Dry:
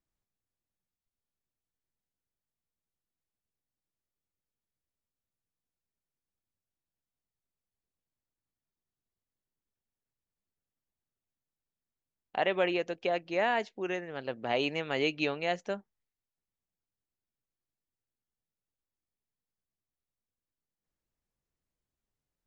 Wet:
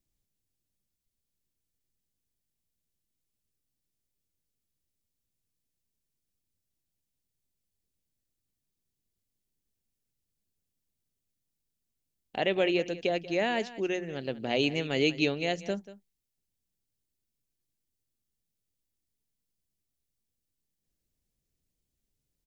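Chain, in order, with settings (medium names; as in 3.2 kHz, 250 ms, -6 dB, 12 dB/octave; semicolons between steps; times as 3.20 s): peaking EQ 1.1 kHz -15 dB 2 oct; hum notches 60/120/180 Hz; on a send: delay 187 ms -16.5 dB; on the sum: trim +8.5 dB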